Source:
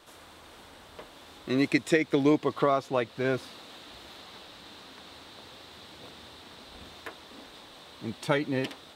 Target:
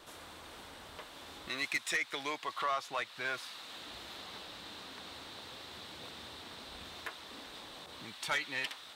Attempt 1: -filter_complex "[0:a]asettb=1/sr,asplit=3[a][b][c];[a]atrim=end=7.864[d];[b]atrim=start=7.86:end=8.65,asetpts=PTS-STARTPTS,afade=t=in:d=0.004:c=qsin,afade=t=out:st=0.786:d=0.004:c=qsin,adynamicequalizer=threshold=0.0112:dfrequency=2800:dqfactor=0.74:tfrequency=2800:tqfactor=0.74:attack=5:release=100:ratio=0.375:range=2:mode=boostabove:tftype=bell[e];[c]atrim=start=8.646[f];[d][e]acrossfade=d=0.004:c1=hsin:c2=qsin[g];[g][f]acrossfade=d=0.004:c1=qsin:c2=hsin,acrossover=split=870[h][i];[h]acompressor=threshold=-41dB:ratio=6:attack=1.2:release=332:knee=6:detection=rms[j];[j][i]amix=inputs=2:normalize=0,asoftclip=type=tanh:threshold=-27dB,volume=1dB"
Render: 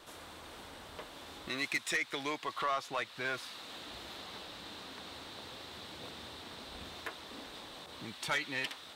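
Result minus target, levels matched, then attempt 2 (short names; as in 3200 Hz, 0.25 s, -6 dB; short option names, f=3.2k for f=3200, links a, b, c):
compressor: peak gain reduction -6 dB
-filter_complex "[0:a]asettb=1/sr,asplit=3[a][b][c];[a]atrim=end=7.864[d];[b]atrim=start=7.86:end=8.65,asetpts=PTS-STARTPTS,afade=t=in:d=0.004:c=qsin,afade=t=out:st=0.786:d=0.004:c=qsin,adynamicequalizer=threshold=0.0112:dfrequency=2800:dqfactor=0.74:tfrequency=2800:tqfactor=0.74:attack=5:release=100:ratio=0.375:range=2:mode=boostabove:tftype=bell[e];[c]atrim=start=8.646[f];[d][e]acrossfade=d=0.004:c1=hsin:c2=qsin[g];[g][f]acrossfade=d=0.004:c1=qsin:c2=hsin,acrossover=split=870[h][i];[h]acompressor=threshold=-48dB:ratio=6:attack=1.2:release=332:knee=6:detection=rms[j];[j][i]amix=inputs=2:normalize=0,asoftclip=type=tanh:threshold=-27dB,volume=1dB"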